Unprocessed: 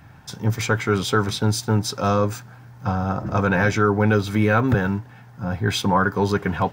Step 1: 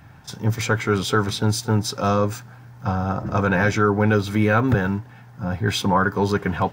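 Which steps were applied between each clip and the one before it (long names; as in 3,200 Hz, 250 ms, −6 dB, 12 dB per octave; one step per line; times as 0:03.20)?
echo ahead of the sound 34 ms −22 dB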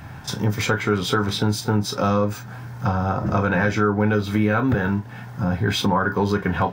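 dynamic equaliser 8,500 Hz, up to −6 dB, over −46 dBFS, Q 0.83
convolution reverb, pre-delay 12 ms, DRR 8 dB
downward compressor 2.5 to 1, threshold −30 dBFS, peak gain reduction 12.5 dB
level +8.5 dB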